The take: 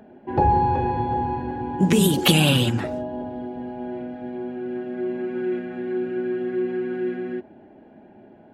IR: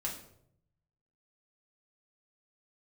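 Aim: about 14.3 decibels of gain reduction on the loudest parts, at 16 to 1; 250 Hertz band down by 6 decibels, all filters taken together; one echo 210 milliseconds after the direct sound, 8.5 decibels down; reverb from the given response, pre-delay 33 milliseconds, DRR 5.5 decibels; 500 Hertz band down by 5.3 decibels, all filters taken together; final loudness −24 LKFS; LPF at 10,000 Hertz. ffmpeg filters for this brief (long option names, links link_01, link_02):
-filter_complex "[0:a]lowpass=10000,equalizer=frequency=250:width_type=o:gain=-8,equalizer=frequency=500:width_type=o:gain=-3.5,acompressor=threshold=-29dB:ratio=16,aecho=1:1:210:0.376,asplit=2[link_01][link_02];[1:a]atrim=start_sample=2205,adelay=33[link_03];[link_02][link_03]afir=irnorm=-1:irlink=0,volume=-7dB[link_04];[link_01][link_04]amix=inputs=2:normalize=0,volume=10dB"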